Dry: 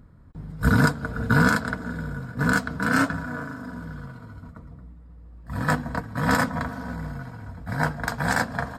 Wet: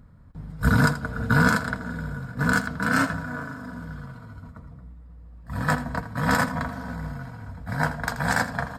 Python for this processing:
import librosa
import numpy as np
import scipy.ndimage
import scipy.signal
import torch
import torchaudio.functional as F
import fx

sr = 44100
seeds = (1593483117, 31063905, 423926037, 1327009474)

p1 = fx.peak_eq(x, sr, hz=350.0, db=-6.0, octaves=0.59)
y = p1 + fx.echo_single(p1, sr, ms=81, db=-13.5, dry=0)